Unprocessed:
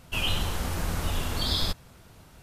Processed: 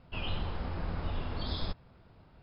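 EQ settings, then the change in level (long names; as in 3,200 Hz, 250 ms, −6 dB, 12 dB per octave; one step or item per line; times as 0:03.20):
Chebyshev low-pass filter 5,200 Hz, order 10
high-shelf EQ 2,200 Hz −11 dB
−4.5 dB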